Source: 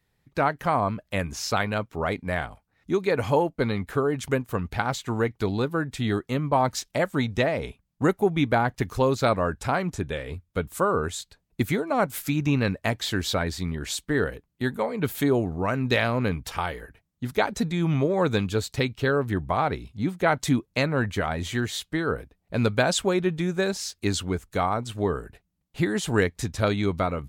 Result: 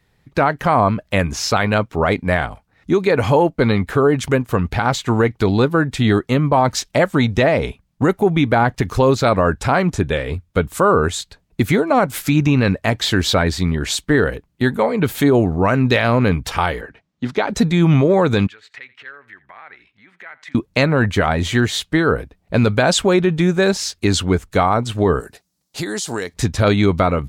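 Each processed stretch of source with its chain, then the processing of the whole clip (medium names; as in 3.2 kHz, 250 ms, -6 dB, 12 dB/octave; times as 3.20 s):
16.81–17.50 s: three-band isolator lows -13 dB, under 150 Hz, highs -24 dB, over 6.8 kHz + compression 3:1, threshold -25 dBFS
18.47–20.55 s: compression 12:1, threshold -32 dBFS + band-pass filter 1.9 kHz, Q 3.3 + delay 84 ms -19.5 dB
25.20–26.34 s: high-pass 400 Hz 6 dB/octave + resonant high shelf 3.7 kHz +9.5 dB, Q 1.5 + compression 5:1, threshold -31 dBFS
whole clip: treble shelf 9 kHz -8.5 dB; loudness maximiser +15 dB; trim -4 dB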